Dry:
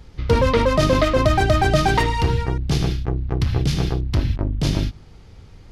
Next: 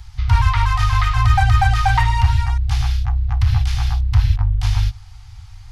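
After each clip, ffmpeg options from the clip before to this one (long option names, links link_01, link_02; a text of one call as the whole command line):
ffmpeg -i in.wav -filter_complex "[0:a]bass=frequency=250:gain=4,treble=frequency=4000:gain=6,acrossover=split=2600[link_01][link_02];[link_02]acompressor=threshold=-37dB:ratio=4:attack=1:release=60[link_03];[link_01][link_03]amix=inputs=2:normalize=0,afftfilt=real='re*(1-between(b*sr/4096,120,700))':imag='im*(1-between(b*sr/4096,120,700))':win_size=4096:overlap=0.75,volume=2.5dB" out.wav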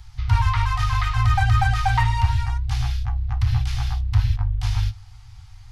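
ffmpeg -i in.wav -af "flanger=delay=7.6:depth=2.3:regen=70:speed=1.1:shape=triangular" out.wav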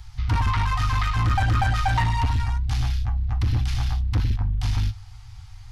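ffmpeg -i in.wav -af "asoftclip=type=tanh:threshold=-17.5dB,volume=1.5dB" out.wav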